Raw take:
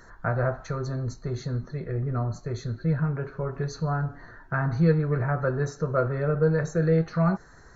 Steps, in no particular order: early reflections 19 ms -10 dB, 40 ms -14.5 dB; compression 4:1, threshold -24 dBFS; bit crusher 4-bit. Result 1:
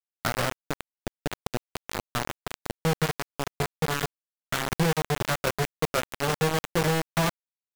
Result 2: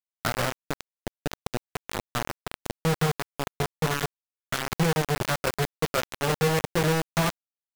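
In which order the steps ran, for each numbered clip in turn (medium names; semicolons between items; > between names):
early reflections > compression > bit crusher; compression > early reflections > bit crusher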